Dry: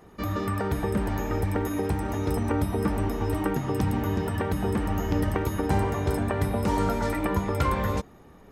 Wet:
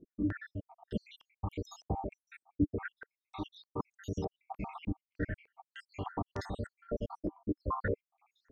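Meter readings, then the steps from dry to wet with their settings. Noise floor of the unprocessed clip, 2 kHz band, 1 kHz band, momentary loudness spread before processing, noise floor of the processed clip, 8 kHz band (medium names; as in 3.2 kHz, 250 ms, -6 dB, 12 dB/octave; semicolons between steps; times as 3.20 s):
-51 dBFS, -11.0 dB, -13.0 dB, 3 LU, under -85 dBFS, -19.0 dB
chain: random holes in the spectrogram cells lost 80%; step-sequenced low-pass 3.3 Hz 300–5700 Hz; trim -7.5 dB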